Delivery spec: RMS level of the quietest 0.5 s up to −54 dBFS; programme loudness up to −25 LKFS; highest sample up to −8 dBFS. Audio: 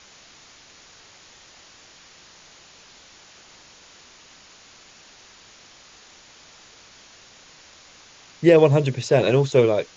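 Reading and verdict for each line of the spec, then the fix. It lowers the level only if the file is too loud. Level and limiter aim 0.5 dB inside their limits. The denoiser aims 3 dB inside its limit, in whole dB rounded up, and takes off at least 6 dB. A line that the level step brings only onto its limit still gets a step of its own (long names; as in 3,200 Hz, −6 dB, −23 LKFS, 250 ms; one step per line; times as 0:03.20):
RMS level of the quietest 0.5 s −50 dBFS: out of spec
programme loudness −18.0 LKFS: out of spec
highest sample −3.5 dBFS: out of spec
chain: level −7.5 dB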